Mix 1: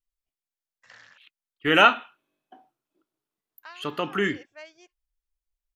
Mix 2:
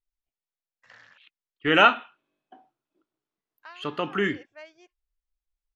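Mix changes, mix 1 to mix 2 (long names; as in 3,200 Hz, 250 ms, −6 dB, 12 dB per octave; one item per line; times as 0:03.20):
first voice: add low-pass filter 3,000 Hz 6 dB per octave
second voice: add high-frequency loss of the air 76 metres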